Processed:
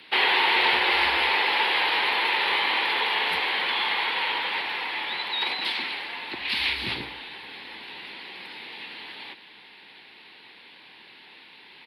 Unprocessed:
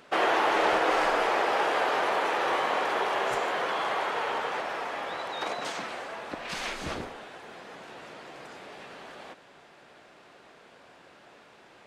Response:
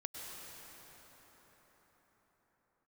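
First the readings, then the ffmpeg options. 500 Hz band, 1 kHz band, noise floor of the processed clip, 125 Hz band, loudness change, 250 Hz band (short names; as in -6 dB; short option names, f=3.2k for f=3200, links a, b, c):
-6.5 dB, 0.0 dB, -50 dBFS, -0.5 dB, +5.0 dB, -2.5 dB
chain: -filter_complex "[0:a]firequalizer=gain_entry='entry(310,0);entry(590,-13);entry(850,3);entry(1200,-7);entry(2000,10);entry(4200,13);entry(6600,-25);entry(10000,3)':delay=0.05:min_phase=1,afreqshift=46,asplit=2[a][b];[1:a]atrim=start_sample=2205[c];[b][c]afir=irnorm=-1:irlink=0,volume=-17dB[d];[a][d]amix=inputs=2:normalize=0"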